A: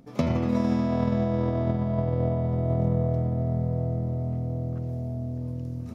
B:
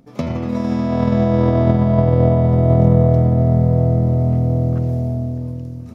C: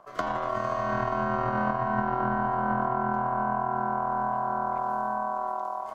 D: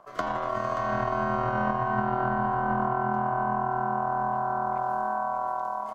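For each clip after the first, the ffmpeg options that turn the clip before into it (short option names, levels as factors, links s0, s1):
-af "dynaudnorm=f=300:g=7:m=3.76,volume=1.26"
-filter_complex "[0:a]aeval=exprs='val(0)*sin(2*PI*870*n/s)':c=same,acrossover=split=190[s0][s1];[s1]acompressor=threshold=0.0501:ratio=5[s2];[s0][s2]amix=inputs=2:normalize=0"
-af "aecho=1:1:579:0.316"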